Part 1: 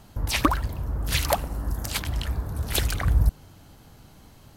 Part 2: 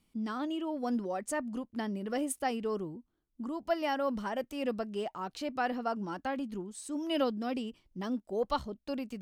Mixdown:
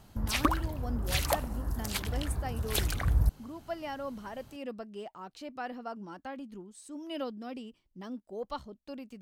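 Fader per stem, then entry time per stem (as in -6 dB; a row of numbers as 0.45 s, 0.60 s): -5.5 dB, -6.5 dB; 0.00 s, 0.00 s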